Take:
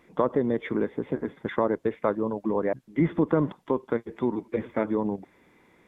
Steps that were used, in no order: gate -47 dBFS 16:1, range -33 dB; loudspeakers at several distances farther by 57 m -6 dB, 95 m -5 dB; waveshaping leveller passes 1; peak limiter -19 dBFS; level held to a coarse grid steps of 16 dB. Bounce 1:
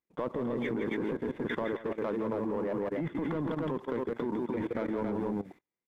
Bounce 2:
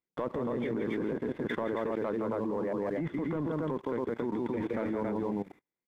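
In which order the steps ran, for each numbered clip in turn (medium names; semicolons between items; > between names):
peak limiter > waveshaping leveller > loudspeakers at several distances > gate > level held to a coarse grid; loudspeakers at several distances > waveshaping leveller > gate > peak limiter > level held to a coarse grid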